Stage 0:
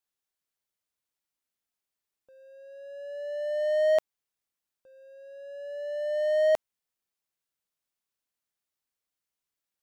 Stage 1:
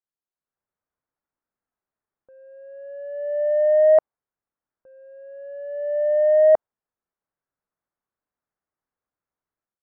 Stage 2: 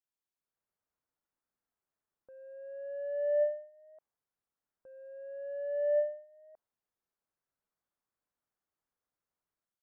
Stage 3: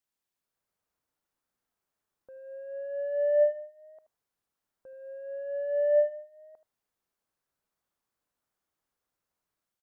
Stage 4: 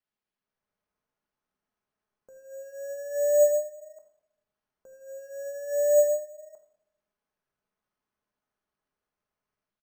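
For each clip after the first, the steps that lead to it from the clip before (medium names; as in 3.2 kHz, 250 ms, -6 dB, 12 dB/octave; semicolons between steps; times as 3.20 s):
low-pass 1.6 kHz 24 dB/octave; dynamic bell 690 Hz, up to +5 dB, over -37 dBFS, Q 0.99; level rider gain up to 12 dB; trim -6 dB
endings held to a fixed fall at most 120 dB/s; trim -3.5 dB
delay 78 ms -14.5 dB; trim +5 dB
doubling 15 ms -14 dB; simulated room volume 2000 m³, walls furnished, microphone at 1.4 m; careless resampling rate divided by 6×, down filtered, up hold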